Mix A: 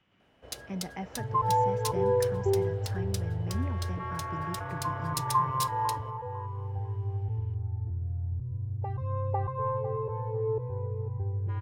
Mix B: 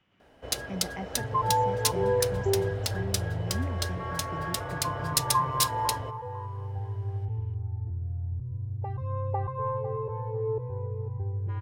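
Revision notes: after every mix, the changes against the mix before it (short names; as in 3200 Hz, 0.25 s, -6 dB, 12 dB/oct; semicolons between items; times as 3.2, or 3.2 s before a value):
first sound +9.5 dB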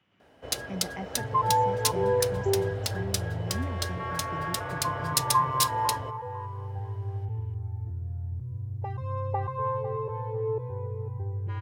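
second sound: add high shelf 2100 Hz +11 dB; master: add HPF 70 Hz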